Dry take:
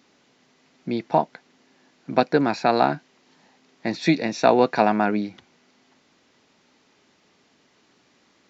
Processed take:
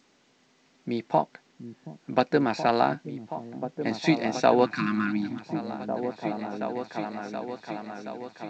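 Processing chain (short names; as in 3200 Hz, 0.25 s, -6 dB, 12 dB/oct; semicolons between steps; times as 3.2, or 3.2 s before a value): repeats that get brighter 0.725 s, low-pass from 200 Hz, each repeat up 2 oct, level -6 dB; spectral repair 4.67–5.39, 350–1000 Hz after; gain -3.5 dB; G.722 64 kbps 16000 Hz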